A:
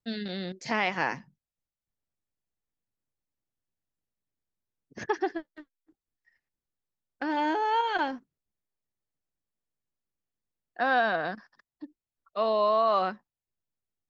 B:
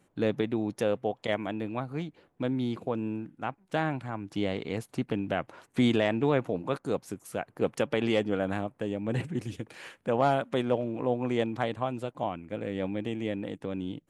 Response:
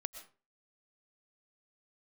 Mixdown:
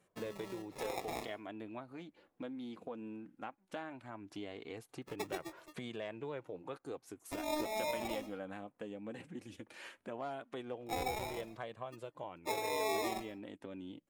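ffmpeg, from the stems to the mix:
-filter_complex "[0:a]acrusher=samples=29:mix=1:aa=0.000001,adelay=100,volume=-5dB,asplit=2[link_01][link_02];[link_02]volume=-7.5dB[link_03];[1:a]acompressor=threshold=-38dB:ratio=2.5,volume=-1dB,asplit=2[link_04][link_05];[link_05]apad=whole_len=626159[link_06];[link_01][link_06]sidechaincompress=threshold=-45dB:ratio=8:attack=31:release=245[link_07];[2:a]atrim=start_sample=2205[link_08];[link_03][link_08]afir=irnorm=-1:irlink=0[link_09];[link_07][link_04][link_09]amix=inputs=3:normalize=0,lowshelf=frequency=150:gain=-10,flanger=delay=1.7:depth=2.4:regen=-42:speed=0.17:shape=triangular"

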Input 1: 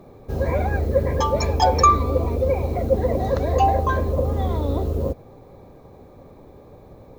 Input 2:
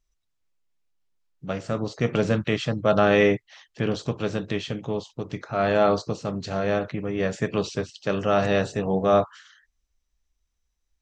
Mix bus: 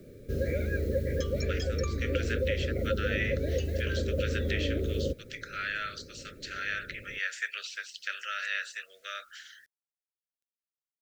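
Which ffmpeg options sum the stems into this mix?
ffmpeg -i stem1.wav -i stem2.wav -filter_complex "[0:a]volume=-3.5dB[link_01];[1:a]dynaudnorm=framelen=110:gausssize=9:maxgain=13dB,highpass=frequency=1300:width=0.5412,highpass=frequency=1300:width=1.3066,volume=-4dB[link_02];[link_01][link_02]amix=inputs=2:normalize=0,acrossover=split=240|2500[link_03][link_04][link_05];[link_03]acompressor=threshold=-30dB:ratio=4[link_06];[link_04]acompressor=threshold=-28dB:ratio=4[link_07];[link_05]acompressor=threshold=-43dB:ratio=4[link_08];[link_06][link_07][link_08]amix=inputs=3:normalize=0,acrusher=bits=10:mix=0:aa=0.000001,asuperstop=centerf=900:order=8:qfactor=1.1" out.wav

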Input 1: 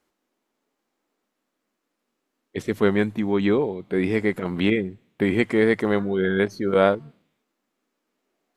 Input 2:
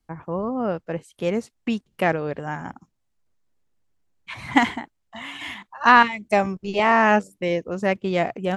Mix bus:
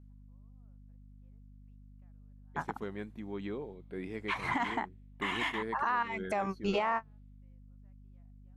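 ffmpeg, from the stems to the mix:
ffmpeg -i stem1.wav -i stem2.wav -filter_complex "[0:a]alimiter=limit=-9.5dB:level=0:latency=1:release=436,aeval=exprs='val(0)+0.0178*(sin(2*PI*50*n/s)+sin(2*PI*2*50*n/s)/2+sin(2*PI*3*50*n/s)/3+sin(2*PI*4*50*n/s)/4+sin(2*PI*5*50*n/s)/5)':channel_layout=same,volume=-18dB,asplit=2[link_01][link_02];[1:a]equalizer=frequency=1100:width=0.8:gain=11,acompressor=threshold=-14dB:ratio=6,volume=-4dB[link_03];[link_02]apad=whole_len=377745[link_04];[link_03][link_04]sidechaingate=range=-56dB:threshold=-45dB:ratio=16:detection=peak[link_05];[link_01][link_05]amix=inputs=2:normalize=0,alimiter=limit=-21.5dB:level=0:latency=1:release=184" out.wav

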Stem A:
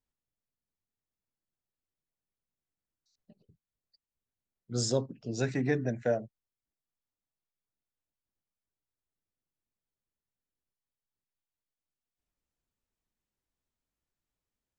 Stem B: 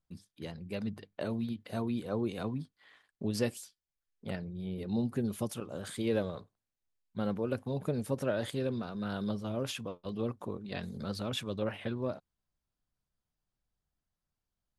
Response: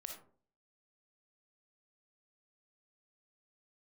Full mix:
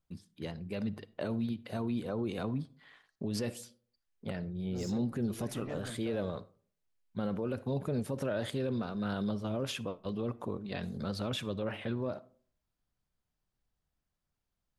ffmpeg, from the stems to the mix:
-filter_complex "[0:a]asoftclip=type=tanh:threshold=-29dB,volume=-11.5dB,asplit=2[link_01][link_02];[link_02]volume=-3.5dB[link_03];[1:a]volume=1dB,asplit=2[link_04][link_05];[link_05]volume=-11dB[link_06];[2:a]atrim=start_sample=2205[link_07];[link_03][link_06]amix=inputs=2:normalize=0[link_08];[link_08][link_07]afir=irnorm=-1:irlink=0[link_09];[link_01][link_04][link_09]amix=inputs=3:normalize=0,highshelf=frequency=5900:gain=-5.5,alimiter=level_in=1.5dB:limit=-24dB:level=0:latency=1:release=25,volume=-1.5dB"

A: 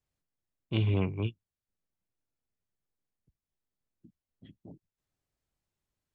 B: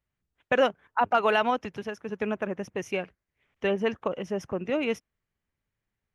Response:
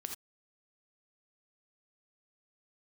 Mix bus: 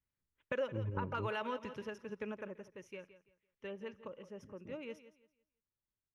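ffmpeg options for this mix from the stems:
-filter_complex "[0:a]lowpass=frequency=1400:width=0.5412,lowpass=frequency=1400:width=1.3066,volume=-5dB[link_01];[1:a]volume=-9.5dB,afade=type=out:start_time=1.93:duration=0.75:silence=0.316228,asplit=4[link_02][link_03][link_04][link_05];[link_03]volume=-21dB[link_06];[link_04]volume=-14dB[link_07];[link_05]apad=whole_len=271092[link_08];[link_01][link_08]sidechaingate=range=-7dB:threshold=-60dB:ratio=16:detection=peak[link_09];[2:a]atrim=start_sample=2205[link_10];[link_06][link_10]afir=irnorm=-1:irlink=0[link_11];[link_07]aecho=0:1:168|336|504|672:1|0.27|0.0729|0.0197[link_12];[link_09][link_02][link_11][link_12]amix=inputs=4:normalize=0,adynamicequalizer=threshold=0.00224:dfrequency=540:dqfactor=6.9:tfrequency=540:tqfactor=6.9:attack=5:release=100:ratio=0.375:range=3.5:mode=boostabove:tftype=bell,asuperstop=centerf=720:order=4:qfactor=4.4,acompressor=threshold=-36dB:ratio=3"

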